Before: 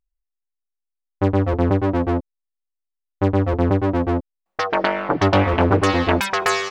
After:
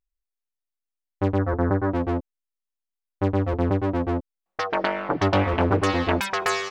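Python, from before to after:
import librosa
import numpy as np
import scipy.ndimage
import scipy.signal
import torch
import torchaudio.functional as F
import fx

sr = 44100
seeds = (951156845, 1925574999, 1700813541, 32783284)

y = fx.high_shelf_res(x, sr, hz=2100.0, db=-9.0, q=3.0, at=(1.38, 1.92))
y = F.gain(torch.from_numpy(y), -4.5).numpy()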